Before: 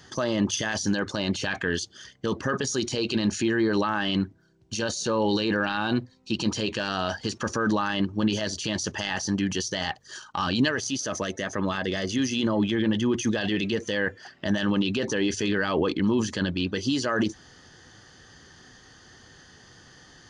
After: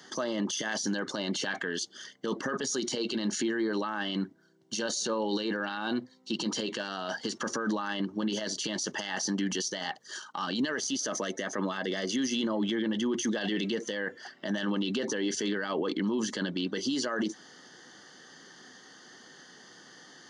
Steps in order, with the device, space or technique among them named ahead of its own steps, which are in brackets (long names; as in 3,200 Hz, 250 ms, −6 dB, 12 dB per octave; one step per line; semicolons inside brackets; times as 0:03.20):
PA system with an anti-feedback notch (high-pass filter 190 Hz 24 dB per octave; Butterworth band-reject 2,500 Hz, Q 7.4; brickwall limiter −22 dBFS, peak gain reduction 11 dB)